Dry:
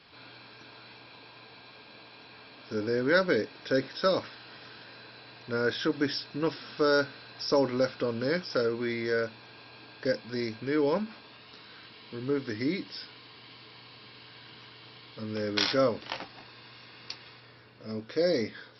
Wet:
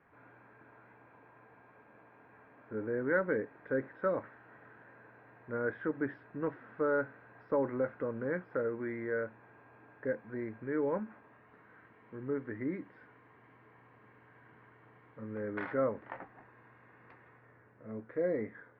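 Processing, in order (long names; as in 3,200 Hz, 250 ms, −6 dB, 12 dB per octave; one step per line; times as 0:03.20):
Chebyshev low-pass filter 1,900 Hz, order 4
level −5.5 dB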